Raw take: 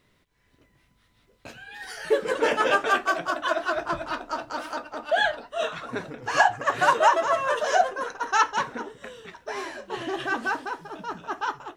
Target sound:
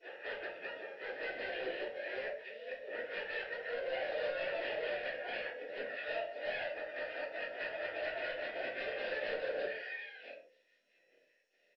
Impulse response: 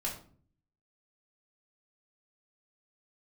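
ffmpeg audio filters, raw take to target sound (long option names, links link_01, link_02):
-filter_complex "[0:a]areverse,highpass=340,aemphasis=mode=production:type=50fm,acompressor=threshold=-23dB:ratio=4,aeval=exprs='0.0562*(abs(mod(val(0)/0.0562+3,4)-2)-1)':channel_layout=same,asplit=4[link_01][link_02][link_03][link_04];[link_02]asetrate=22050,aresample=44100,atempo=2,volume=-15dB[link_05];[link_03]asetrate=58866,aresample=44100,atempo=0.749154,volume=-4dB[link_06];[link_04]asetrate=88200,aresample=44100,atempo=0.5,volume=-10dB[link_07];[link_01][link_05][link_06][link_07]amix=inputs=4:normalize=0,acrossover=split=4100[link_08][link_09];[link_09]acompressor=threshold=-44dB:ratio=4:attack=1:release=60[link_10];[link_08][link_10]amix=inputs=2:normalize=0,asplit=3[link_11][link_12][link_13];[link_11]bandpass=frequency=530:width_type=q:width=8,volume=0dB[link_14];[link_12]bandpass=frequency=1840:width_type=q:width=8,volume=-6dB[link_15];[link_13]bandpass=frequency=2480:width_type=q:width=8,volume=-9dB[link_16];[link_14][link_15][link_16]amix=inputs=3:normalize=0,asoftclip=type=hard:threshold=-37.5dB,aresample=11025,aresample=44100[link_17];[1:a]atrim=start_sample=2205,afade=type=out:start_time=0.23:duration=0.01,atrim=end_sample=10584[link_18];[link_17][link_18]afir=irnorm=-1:irlink=0,volume=2dB" -ar 22050 -c:a mp2 -b:a 96k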